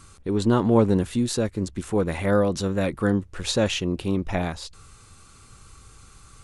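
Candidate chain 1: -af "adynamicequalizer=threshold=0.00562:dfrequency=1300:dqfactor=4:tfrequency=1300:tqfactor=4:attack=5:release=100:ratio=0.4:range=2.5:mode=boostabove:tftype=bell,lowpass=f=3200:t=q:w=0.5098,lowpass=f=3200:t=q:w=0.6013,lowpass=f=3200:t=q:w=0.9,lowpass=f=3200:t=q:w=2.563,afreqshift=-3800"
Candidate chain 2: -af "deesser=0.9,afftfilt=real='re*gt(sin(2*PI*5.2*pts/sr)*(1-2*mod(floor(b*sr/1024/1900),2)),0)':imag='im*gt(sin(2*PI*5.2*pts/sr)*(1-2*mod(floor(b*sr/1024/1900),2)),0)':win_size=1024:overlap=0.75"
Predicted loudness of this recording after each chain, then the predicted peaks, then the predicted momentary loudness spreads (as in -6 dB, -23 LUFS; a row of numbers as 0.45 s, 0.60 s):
-20.0 LUFS, -27.5 LUFS; -4.0 dBFS, -6.0 dBFS; 9 LU, 11 LU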